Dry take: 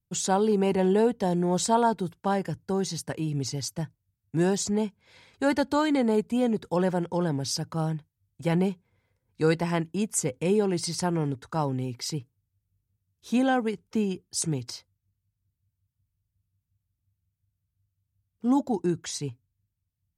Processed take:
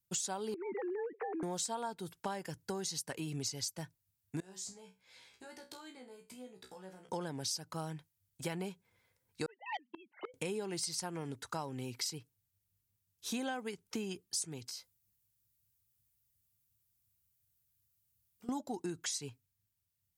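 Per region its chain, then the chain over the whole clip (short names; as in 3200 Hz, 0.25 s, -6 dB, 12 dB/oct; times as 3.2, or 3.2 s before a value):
0.54–1.43 sine-wave speech + steep low-pass 2400 Hz 72 dB/oct + compressor 4:1, threshold -29 dBFS
4.4–7.09 compressor 20:1, threshold -37 dBFS + resonator 63 Hz, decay 0.25 s, mix 100%
9.46–10.34 sine-wave speech + flipped gate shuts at -24 dBFS, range -25 dB + core saturation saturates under 1800 Hz
14.68–18.49 high shelf 6200 Hz +6.5 dB + compressor 4:1, threshold -48 dBFS + doubler 16 ms -6 dB
whole clip: tilt +2.5 dB/oct; compressor 6:1, threshold -35 dBFS; gain -1 dB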